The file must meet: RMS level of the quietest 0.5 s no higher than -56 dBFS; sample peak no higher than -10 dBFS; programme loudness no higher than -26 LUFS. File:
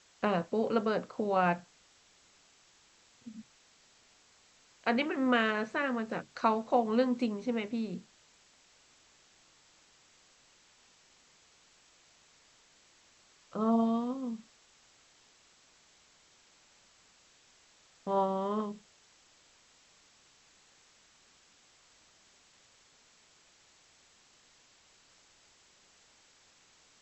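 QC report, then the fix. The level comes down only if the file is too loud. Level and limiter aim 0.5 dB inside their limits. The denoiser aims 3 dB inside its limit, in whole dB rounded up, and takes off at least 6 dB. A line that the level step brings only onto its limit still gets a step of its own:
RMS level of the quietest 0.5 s -64 dBFS: OK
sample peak -14.0 dBFS: OK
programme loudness -32.0 LUFS: OK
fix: none

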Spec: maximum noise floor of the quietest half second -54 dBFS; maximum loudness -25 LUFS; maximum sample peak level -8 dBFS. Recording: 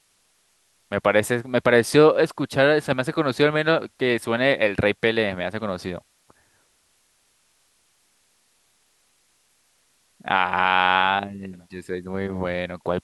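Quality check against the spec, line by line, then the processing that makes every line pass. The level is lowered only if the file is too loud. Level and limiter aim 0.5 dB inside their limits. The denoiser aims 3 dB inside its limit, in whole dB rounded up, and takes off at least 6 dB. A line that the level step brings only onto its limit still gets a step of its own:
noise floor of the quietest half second -65 dBFS: OK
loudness -21.5 LUFS: fail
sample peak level -2.5 dBFS: fail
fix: gain -4 dB; limiter -8.5 dBFS

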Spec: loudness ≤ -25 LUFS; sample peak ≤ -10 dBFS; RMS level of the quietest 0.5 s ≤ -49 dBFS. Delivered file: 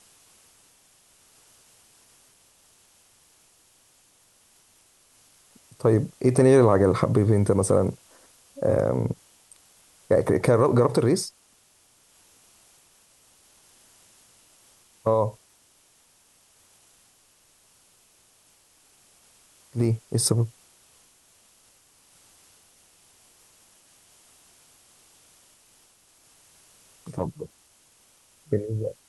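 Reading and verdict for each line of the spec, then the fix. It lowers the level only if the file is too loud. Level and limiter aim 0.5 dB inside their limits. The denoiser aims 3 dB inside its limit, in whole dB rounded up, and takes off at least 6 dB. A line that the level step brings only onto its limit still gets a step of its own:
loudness -23.0 LUFS: fail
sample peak -6.0 dBFS: fail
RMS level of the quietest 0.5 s -61 dBFS: OK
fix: gain -2.5 dB; limiter -10.5 dBFS

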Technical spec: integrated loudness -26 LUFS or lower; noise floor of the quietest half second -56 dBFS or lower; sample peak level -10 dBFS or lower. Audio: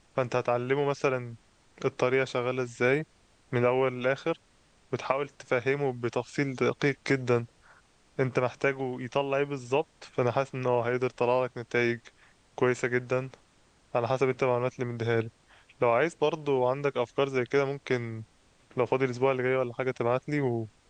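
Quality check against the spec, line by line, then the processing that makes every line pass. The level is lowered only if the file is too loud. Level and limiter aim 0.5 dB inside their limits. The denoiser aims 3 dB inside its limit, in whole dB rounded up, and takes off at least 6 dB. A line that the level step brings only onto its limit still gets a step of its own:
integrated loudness -29.0 LUFS: OK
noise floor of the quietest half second -63 dBFS: OK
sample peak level -9.5 dBFS: fail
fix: limiter -10.5 dBFS

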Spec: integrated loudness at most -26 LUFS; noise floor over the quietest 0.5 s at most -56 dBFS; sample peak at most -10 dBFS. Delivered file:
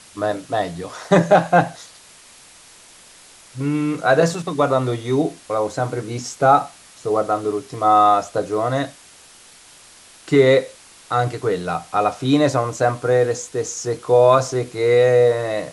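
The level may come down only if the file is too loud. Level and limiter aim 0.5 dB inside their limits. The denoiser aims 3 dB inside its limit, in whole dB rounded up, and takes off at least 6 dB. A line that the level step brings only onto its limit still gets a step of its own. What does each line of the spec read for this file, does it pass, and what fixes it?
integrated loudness -18.5 LUFS: fail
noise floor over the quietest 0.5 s -46 dBFS: fail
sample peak -2.5 dBFS: fail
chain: denoiser 6 dB, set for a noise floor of -46 dBFS; gain -8 dB

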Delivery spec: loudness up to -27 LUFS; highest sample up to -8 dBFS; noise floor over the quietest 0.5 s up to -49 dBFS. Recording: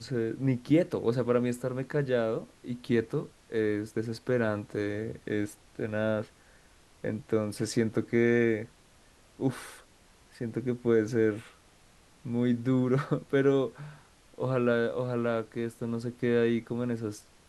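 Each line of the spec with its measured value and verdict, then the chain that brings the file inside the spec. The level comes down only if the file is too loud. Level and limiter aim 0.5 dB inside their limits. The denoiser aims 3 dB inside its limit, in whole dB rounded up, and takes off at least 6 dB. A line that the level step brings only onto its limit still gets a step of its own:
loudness -30.0 LUFS: OK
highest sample -12.0 dBFS: OK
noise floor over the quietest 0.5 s -59 dBFS: OK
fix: none

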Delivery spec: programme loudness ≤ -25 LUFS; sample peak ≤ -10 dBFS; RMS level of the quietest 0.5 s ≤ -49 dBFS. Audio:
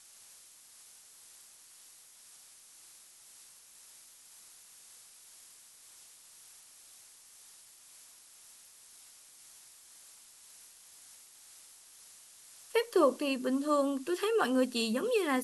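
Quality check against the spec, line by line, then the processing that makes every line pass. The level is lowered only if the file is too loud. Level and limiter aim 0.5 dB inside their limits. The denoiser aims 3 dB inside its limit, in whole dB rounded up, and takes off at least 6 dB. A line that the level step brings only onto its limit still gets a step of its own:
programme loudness -30.5 LUFS: OK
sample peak -15.0 dBFS: OK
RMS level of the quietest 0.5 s -57 dBFS: OK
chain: none

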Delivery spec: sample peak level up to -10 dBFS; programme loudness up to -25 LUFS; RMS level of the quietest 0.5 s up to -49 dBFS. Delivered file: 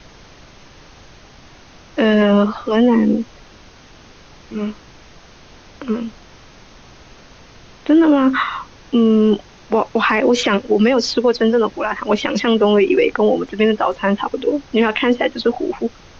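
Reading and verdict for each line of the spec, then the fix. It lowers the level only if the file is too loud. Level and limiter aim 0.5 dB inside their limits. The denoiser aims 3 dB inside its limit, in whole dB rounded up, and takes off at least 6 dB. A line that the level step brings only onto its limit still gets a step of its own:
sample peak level -5.5 dBFS: fail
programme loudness -16.5 LUFS: fail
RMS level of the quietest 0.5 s -44 dBFS: fail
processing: gain -9 dB

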